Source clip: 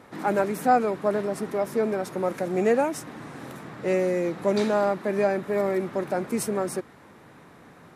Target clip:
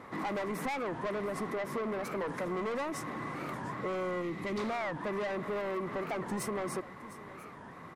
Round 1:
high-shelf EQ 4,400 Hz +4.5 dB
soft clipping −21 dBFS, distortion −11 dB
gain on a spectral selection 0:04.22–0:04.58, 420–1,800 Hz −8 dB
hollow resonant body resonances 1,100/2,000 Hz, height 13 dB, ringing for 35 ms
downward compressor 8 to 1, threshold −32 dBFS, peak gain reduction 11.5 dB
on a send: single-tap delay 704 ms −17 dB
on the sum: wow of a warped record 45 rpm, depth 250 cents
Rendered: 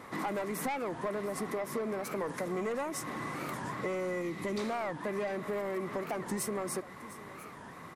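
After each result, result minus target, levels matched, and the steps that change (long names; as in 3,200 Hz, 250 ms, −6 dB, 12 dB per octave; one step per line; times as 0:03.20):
8,000 Hz band +6.0 dB; soft clipping: distortion −5 dB
change: high-shelf EQ 4,400 Hz −7 dB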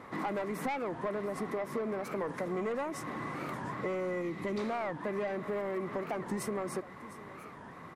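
soft clipping: distortion −5 dB
change: soft clipping −28.5 dBFS, distortion −6 dB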